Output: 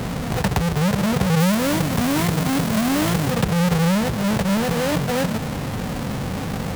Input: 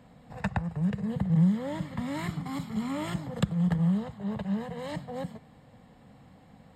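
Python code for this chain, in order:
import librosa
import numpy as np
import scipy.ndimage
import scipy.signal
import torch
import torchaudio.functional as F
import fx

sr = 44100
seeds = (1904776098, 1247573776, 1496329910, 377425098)

y = fx.halfwave_hold(x, sr)
y = fx.high_shelf(y, sr, hz=6700.0, db=5.0, at=(1.4, 3.31))
y = fx.env_flatten(y, sr, amount_pct=70)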